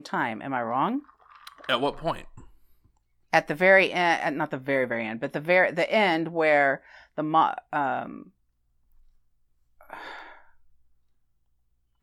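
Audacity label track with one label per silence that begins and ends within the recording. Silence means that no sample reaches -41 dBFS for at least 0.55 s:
2.460000	3.330000	silence
8.230000	9.810000	silence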